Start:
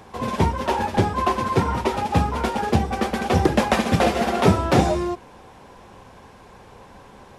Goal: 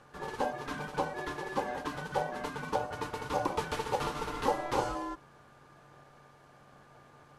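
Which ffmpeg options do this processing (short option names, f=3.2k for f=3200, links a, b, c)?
-filter_complex "[0:a]equalizer=f=1.3k:w=0.54:g=-3,acrossover=split=420|1800[a][b][c];[b]asoftclip=type=tanh:threshold=-26.5dB[d];[a][d][c]amix=inputs=3:normalize=0,aeval=exprs='val(0)+0.00398*sin(2*PI*530*n/s)':c=same,aeval=exprs='val(0)*sin(2*PI*670*n/s)':c=same,volume=-9dB"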